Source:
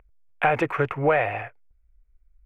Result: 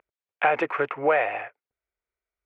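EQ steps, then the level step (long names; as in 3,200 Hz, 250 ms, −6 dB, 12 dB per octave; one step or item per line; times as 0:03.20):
band-pass filter 340–4,400 Hz
0.0 dB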